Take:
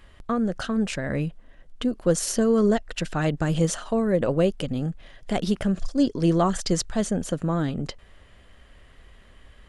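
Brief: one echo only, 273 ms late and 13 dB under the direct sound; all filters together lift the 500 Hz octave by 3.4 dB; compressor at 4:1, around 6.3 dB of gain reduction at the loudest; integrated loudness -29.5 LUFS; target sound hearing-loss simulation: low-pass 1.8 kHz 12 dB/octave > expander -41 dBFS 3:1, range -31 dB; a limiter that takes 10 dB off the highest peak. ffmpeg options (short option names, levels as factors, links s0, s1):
-af "equalizer=f=500:t=o:g=4,acompressor=threshold=0.0891:ratio=4,alimiter=limit=0.0794:level=0:latency=1,lowpass=1800,aecho=1:1:273:0.224,agate=range=0.0282:threshold=0.00891:ratio=3,volume=1.33"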